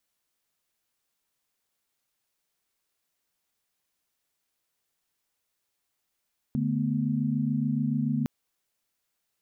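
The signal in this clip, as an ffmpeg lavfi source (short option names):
-f lavfi -i "aevalsrc='0.0376*(sin(2*PI*146.83*t)+sin(2*PI*220*t)+sin(2*PI*246.94*t))':d=1.71:s=44100"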